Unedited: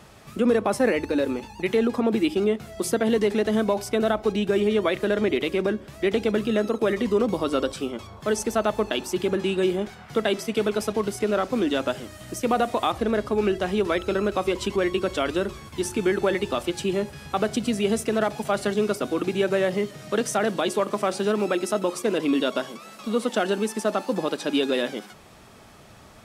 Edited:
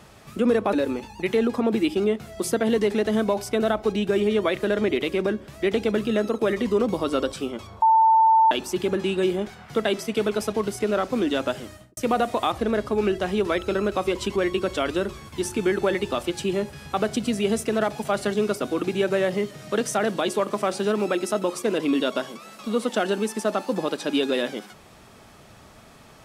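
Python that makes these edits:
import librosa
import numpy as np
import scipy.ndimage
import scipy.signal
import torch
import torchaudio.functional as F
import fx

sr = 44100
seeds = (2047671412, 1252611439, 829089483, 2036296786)

y = fx.studio_fade_out(x, sr, start_s=12.08, length_s=0.29)
y = fx.edit(y, sr, fx.cut(start_s=0.73, length_s=0.4),
    fx.bleep(start_s=8.22, length_s=0.69, hz=892.0, db=-13.0), tone=tone)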